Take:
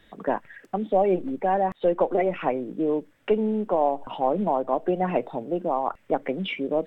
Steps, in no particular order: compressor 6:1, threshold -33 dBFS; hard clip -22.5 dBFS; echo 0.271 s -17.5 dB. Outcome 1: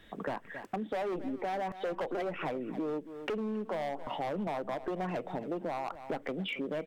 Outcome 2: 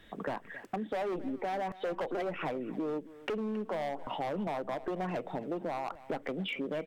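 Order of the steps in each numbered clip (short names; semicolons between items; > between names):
hard clip > echo > compressor; hard clip > compressor > echo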